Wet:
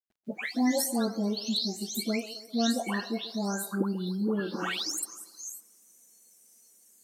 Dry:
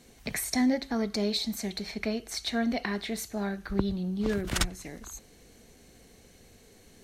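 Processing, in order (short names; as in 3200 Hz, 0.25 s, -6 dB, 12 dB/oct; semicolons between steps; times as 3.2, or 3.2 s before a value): spectral delay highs late, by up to 0.419 s; steep high-pass 190 Hz 48 dB/oct; spectral noise reduction 25 dB; in parallel at +0.5 dB: compressor, threshold -41 dBFS, peak gain reduction 17 dB; on the sum: requantised 12-bit, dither none; on a send: band-limited delay 0.133 s, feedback 55%, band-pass 610 Hz, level -12.5 dB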